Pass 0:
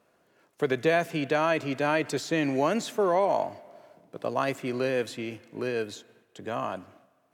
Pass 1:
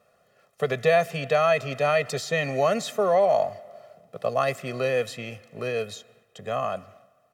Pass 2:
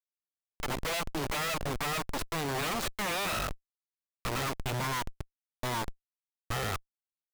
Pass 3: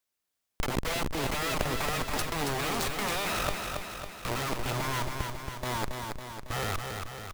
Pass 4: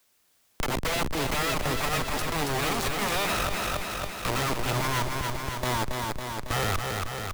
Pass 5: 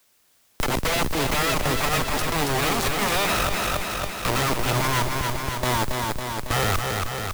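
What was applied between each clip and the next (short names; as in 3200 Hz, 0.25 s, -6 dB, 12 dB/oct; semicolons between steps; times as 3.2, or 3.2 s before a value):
comb 1.6 ms, depth 97%
envelope phaser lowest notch 270 Hz, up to 2300 Hz, full sweep at -24 dBFS; added harmonics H 3 -16 dB, 7 -15 dB, 8 -7 dB, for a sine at -11.5 dBFS; Schmitt trigger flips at -34 dBFS; gain -7 dB
negative-ratio compressor -38 dBFS, ratio -1; on a send: feedback echo 0.276 s, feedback 59%, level -5 dB; on the sum: gain +6.5 dB
limiter -25.5 dBFS, peak gain reduction 10.5 dB; three-band squash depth 40%; gain +5 dB
modulation noise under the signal 17 dB; gain +4.5 dB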